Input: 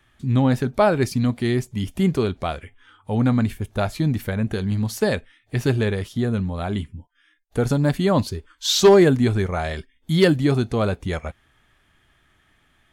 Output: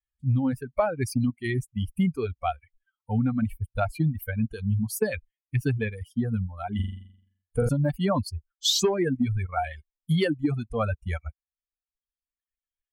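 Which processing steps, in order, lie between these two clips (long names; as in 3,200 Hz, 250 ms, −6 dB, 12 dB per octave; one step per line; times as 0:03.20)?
spectral dynamics exaggerated over time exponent 2
reverb reduction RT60 1.2 s
downward compressor 20 to 1, threshold −26 dBFS, peak gain reduction 17.5 dB
0:06.75–0:07.69: flutter between parallel walls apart 7.3 metres, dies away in 0.64 s
level +6 dB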